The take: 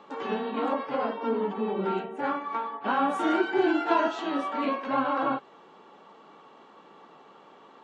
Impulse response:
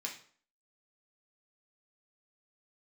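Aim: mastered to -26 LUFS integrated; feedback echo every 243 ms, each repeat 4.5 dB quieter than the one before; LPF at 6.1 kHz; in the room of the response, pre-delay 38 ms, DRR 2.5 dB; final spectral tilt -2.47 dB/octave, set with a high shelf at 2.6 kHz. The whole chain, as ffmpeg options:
-filter_complex "[0:a]lowpass=6100,highshelf=f=2600:g=6,aecho=1:1:243|486|729|972|1215|1458|1701|1944|2187:0.596|0.357|0.214|0.129|0.0772|0.0463|0.0278|0.0167|0.01,asplit=2[s0][s1];[1:a]atrim=start_sample=2205,adelay=38[s2];[s1][s2]afir=irnorm=-1:irlink=0,volume=0.708[s3];[s0][s3]amix=inputs=2:normalize=0,volume=0.841"

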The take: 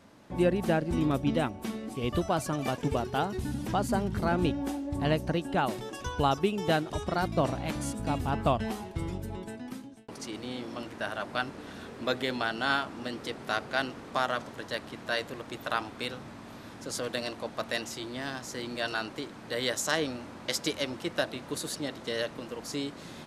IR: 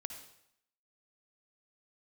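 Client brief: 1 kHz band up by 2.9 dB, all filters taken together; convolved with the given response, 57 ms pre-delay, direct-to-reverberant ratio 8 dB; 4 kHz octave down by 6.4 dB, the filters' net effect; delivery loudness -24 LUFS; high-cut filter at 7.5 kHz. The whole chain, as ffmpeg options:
-filter_complex "[0:a]lowpass=7500,equalizer=f=1000:t=o:g=4.5,equalizer=f=4000:t=o:g=-8.5,asplit=2[s0][s1];[1:a]atrim=start_sample=2205,adelay=57[s2];[s1][s2]afir=irnorm=-1:irlink=0,volume=0.501[s3];[s0][s3]amix=inputs=2:normalize=0,volume=2.11"

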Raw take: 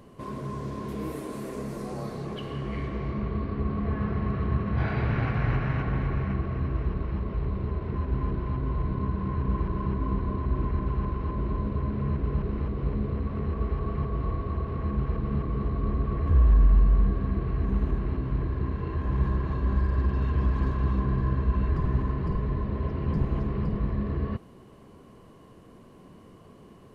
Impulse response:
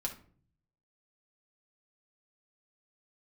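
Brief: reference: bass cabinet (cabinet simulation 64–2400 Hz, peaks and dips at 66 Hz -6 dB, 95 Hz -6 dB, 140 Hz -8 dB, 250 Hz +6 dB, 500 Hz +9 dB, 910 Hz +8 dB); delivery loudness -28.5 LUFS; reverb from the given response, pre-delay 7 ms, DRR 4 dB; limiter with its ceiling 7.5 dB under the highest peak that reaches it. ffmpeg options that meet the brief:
-filter_complex "[0:a]alimiter=limit=0.126:level=0:latency=1,asplit=2[s0][s1];[1:a]atrim=start_sample=2205,adelay=7[s2];[s1][s2]afir=irnorm=-1:irlink=0,volume=0.562[s3];[s0][s3]amix=inputs=2:normalize=0,highpass=f=64:w=0.5412,highpass=f=64:w=1.3066,equalizer=f=66:t=q:w=4:g=-6,equalizer=f=95:t=q:w=4:g=-6,equalizer=f=140:t=q:w=4:g=-8,equalizer=f=250:t=q:w=4:g=6,equalizer=f=500:t=q:w=4:g=9,equalizer=f=910:t=q:w=4:g=8,lowpass=f=2400:w=0.5412,lowpass=f=2400:w=1.3066,volume=1.26"

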